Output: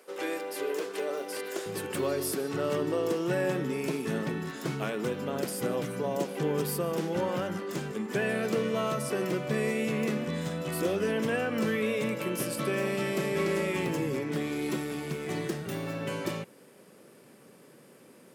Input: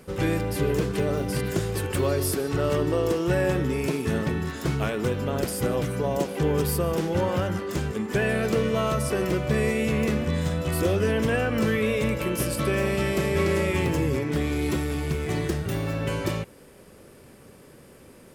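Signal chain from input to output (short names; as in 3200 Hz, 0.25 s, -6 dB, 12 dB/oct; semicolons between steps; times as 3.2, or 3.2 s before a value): HPF 360 Hz 24 dB/oct, from 1.66 s 150 Hz; gain -4.5 dB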